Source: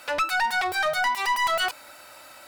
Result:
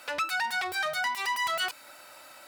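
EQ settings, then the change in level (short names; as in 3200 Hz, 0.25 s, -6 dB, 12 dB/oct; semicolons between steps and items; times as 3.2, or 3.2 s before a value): HPF 76 Hz 12 dB/oct; dynamic EQ 690 Hz, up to -5 dB, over -39 dBFS, Q 0.78; low shelf 170 Hz -3.5 dB; -3.0 dB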